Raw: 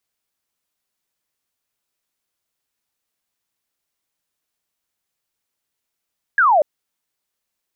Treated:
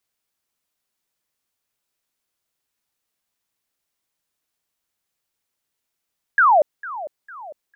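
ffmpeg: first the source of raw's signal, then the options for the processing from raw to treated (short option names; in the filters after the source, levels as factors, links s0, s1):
-f lavfi -i "aevalsrc='0.299*clip(t/0.002,0,1)*clip((0.24-t)/0.002,0,1)*sin(2*PI*1700*0.24/log(560/1700)*(exp(log(560/1700)*t/0.24)-1))':d=0.24:s=44100"
-filter_complex "[0:a]asplit=2[s0][s1];[s1]adelay=452,lowpass=f=2000:p=1,volume=0.168,asplit=2[s2][s3];[s3]adelay=452,lowpass=f=2000:p=1,volume=0.53,asplit=2[s4][s5];[s5]adelay=452,lowpass=f=2000:p=1,volume=0.53,asplit=2[s6][s7];[s7]adelay=452,lowpass=f=2000:p=1,volume=0.53,asplit=2[s8][s9];[s9]adelay=452,lowpass=f=2000:p=1,volume=0.53[s10];[s0][s2][s4][s6][s8][s10]amix=inputs=6:normalize=0"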